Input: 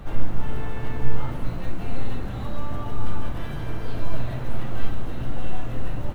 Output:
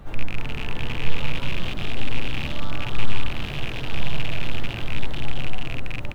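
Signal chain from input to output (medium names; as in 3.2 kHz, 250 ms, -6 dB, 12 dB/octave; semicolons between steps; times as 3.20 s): rattle on loud lows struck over -29 dBFS, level -16 dBFS; ever faster or slower copies 321 ms, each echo +2 st, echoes 3; trim -3.5 dB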